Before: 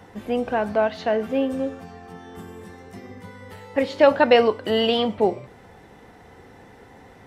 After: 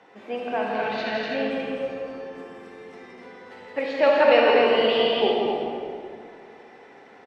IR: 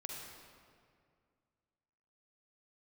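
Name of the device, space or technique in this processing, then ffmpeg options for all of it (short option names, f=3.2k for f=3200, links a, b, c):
station announcement: -filter_complex "[0:a]asettb=1/sr,asplit=3[a][b][c];[a]atrim=end=0.624[d];[b]atrim=start=0.62:end=1.35,asetpts=PTS-STARTPTS,afade=t=in:d=0.004:c=qsin,afade=t=out:st=0.726:d=0.004:c=qsin,equalizer=f=125:t=o:w=1:g=4,equalizer=f=250:t=o:w=1:g=6,equalizer=f=500:t=o:w=1:g=-8,equalizer=f=1k:t=o:w=1:g=-10,equalizer=f=2k:t=o:w=1:g=6,equalizer=f=4k:t=o:w=1:g=6[e];[c]atrim=start=1.346[f];[d][e]acrossfade=d=0.004:c1=hsin:c2=qsin[g];[g][f]acrossfade=d=0.004:c1=qsin:c2=hsin,highpass=340,lowpass=4.9k,equalizer=f=2.4k:t=o:w=0.3:g=5,aecho=1:1:166.2|250.7:0.562|0.631[h];[1:a]atrim=start_sample=2205[i];[h][i]afir=irnorm=-1:irlink=0,asplit=4[j][k][l][m];[k]adelay=209,afreqshift=-72,volume=-17dB[n];[l]adelay=418,afreqshift=-144,volume=-26.1dB[o];[m]adelay=627,afreqshift=-216,volume=-35.2dB[p];[j][n][o][p]amix=inputs=4:normalize=0"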